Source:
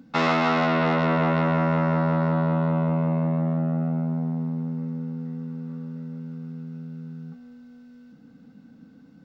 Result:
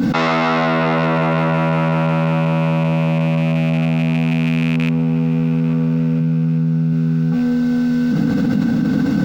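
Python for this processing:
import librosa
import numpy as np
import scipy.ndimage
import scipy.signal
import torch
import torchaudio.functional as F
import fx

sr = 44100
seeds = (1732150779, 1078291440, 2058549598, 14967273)

y = fx.rattle_buzz(x, sr, strikes_db=-27.0, level_db=-26.0)
y = fx.peak_eq(y, sr, hz=140.0, db=8.5, octaves=0.35, at=(6.2, 6.93))
y = fx.echo_feedback(y, sr, ms=844, feedback_pct=47, wet_db=-20.5)
y = fx.env_flatten(y, sr, amount_pct=100)
y = y * 10.0 ** (4.0 / 20.0)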